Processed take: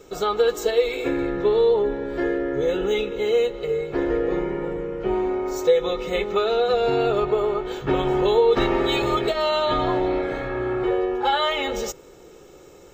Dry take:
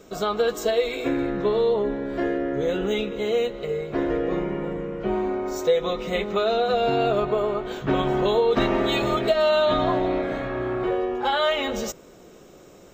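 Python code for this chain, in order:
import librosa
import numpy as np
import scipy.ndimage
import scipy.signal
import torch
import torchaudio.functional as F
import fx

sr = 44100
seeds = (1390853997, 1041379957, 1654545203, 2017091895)

y = x + 0.51 * np.pad(x, (int(2.3 * sr / 1000.0), 0))[:len(x)]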